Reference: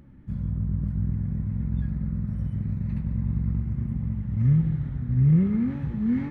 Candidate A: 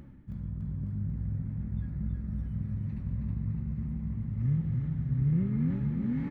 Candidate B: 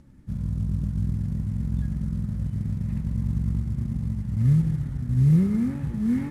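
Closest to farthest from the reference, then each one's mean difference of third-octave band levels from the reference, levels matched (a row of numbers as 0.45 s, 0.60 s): A, B; 1.5 dB, 2.5 dB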